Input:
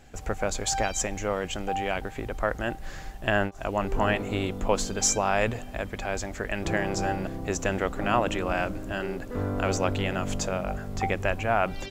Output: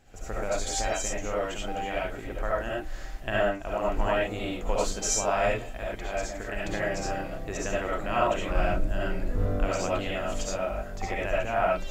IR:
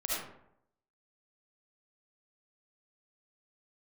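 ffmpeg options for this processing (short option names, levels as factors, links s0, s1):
-filter_complex "[0:a]asettb=1/sr,asplit=3[s0][s1][s2];[s0]atrim=end=8.504[s3];[s1]atrim=start=8.5:end=9.59,asetpts=PTS-STARTPTS,afade=t=in:d=0.004:c=qsin,afade=t=out:st=1.086:d=0.004:c=qsin,lowshelf=f=190:g=11.5[s4];[s2]atrim=start=9.586[s5];[s3][s4]acrossfade=d=0.004:c1=hsin:c2=qsin[s6];[s6][s5]acrossfade=d=0.004:c1=qsin:c2=hsin[s7];[1:a]atrim=start_sample=2205,afade=t=out:st=0.17:d=0.01,atrim=end_sample=7938[s8];[s7][s8]afir=irnorm=-1:irlink=0,volume=0.501"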